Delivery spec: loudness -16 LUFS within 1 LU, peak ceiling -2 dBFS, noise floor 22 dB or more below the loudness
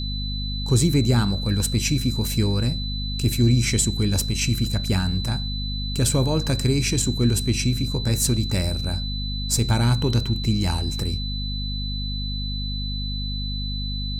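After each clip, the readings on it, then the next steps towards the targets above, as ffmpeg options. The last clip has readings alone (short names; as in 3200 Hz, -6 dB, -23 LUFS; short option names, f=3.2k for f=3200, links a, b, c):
hum 50 Hz; harmonics up to 250 Hz; hum level -25 dBFS; steady tone 4000 Hz; tone level -31 dBFS; loudness -23.0 LUFS; peak -7.5 dBFS; loudness target -16.0 LUFS
-> -af "bandreject=f=50:t=h:w=6,bandreject=f=100:t=h:w=6,bandreject=f=150:t=h:w=6,bandreject=f=200:t=h:w=6,bandreject=f=250:t=h:w=6"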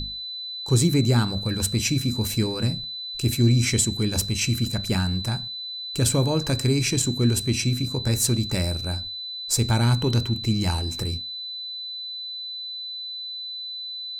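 hum none; steady tone 4000 Hz; tone level -31 dBFS
-> -af "bandreject=f=4k:w=30"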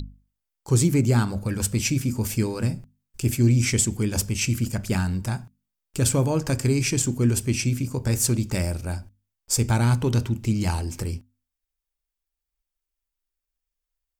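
steady tone none; loudness -24.0 LUFS; peak -8.0 dBFS; loudness target -16.0 LUFS
-> -af "volume=8dB,alimiter=limit=-2dB:level=0:latency=1"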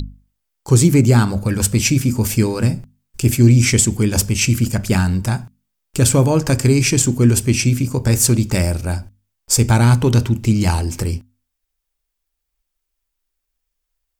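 loudness -16.0 LUFS; peak -2.0 dBFS; noise floor -77 dBFS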